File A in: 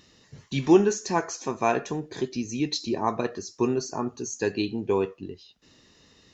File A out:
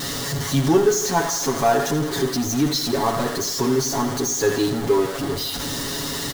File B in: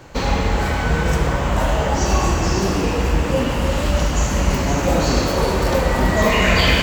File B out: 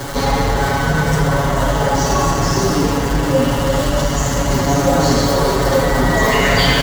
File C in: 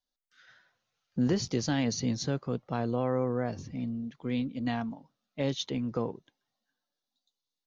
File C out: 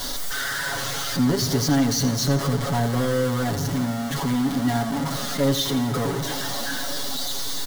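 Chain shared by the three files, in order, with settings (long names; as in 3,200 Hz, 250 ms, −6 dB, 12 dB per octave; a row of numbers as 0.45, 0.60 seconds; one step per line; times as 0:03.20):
converter with a step at zero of −23 dBFS
parametric band 2,500 Hz −10.5 dB 0.29 octaves
comb filter 7.2 ms, depth 97%
repeating echo 84 ms, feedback 56%, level −12 dB
level −1 dB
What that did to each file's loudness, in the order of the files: +5.5, +3.0, +8.5 LU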